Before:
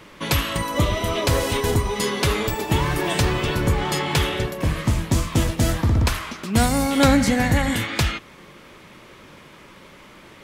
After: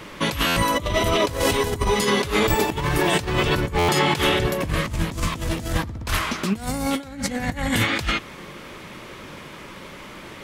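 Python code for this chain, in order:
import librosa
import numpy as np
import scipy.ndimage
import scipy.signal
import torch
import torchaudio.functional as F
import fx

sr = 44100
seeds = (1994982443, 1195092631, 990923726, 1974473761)

y = fx.highpass(x, sr, hz=110.0, slope=12, at=(3.76, 4.27))
y = fx.over_compress(y, sr, threshold_db=-24.0, ratio=-0.5)
y = fx.buffer_glitch(y, sr, at_s=(0.46, 3.78), block=512, repeats=8)
y = y * 10.0 ** (2.5 / 20.0)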